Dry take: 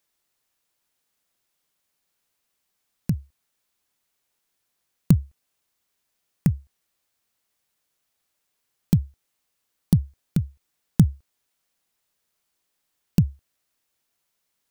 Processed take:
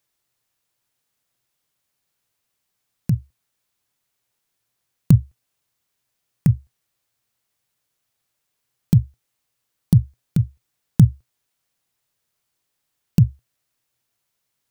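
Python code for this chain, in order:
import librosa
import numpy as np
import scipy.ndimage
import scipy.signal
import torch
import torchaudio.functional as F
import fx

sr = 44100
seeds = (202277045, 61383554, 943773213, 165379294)

y = fx.peak_eq(x, sr, hz=120.0, db=11.5, octaves=0.4)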